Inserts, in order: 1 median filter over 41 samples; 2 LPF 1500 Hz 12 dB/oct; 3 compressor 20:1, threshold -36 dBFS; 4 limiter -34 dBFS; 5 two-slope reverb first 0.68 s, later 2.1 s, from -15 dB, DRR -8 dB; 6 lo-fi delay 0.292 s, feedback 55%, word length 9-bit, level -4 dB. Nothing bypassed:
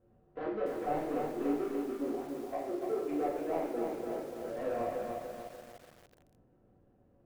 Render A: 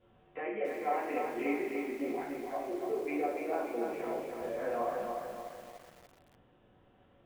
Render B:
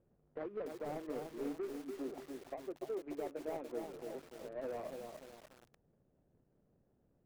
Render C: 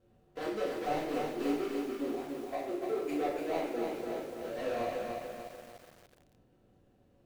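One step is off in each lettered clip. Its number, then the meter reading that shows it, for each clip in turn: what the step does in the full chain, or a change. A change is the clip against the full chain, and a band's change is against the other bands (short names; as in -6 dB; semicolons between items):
1, 2 kHz band +7.5 dB; 5, momentary loudness spread change -3 LU; 2, 4 kHz band +9.0 dB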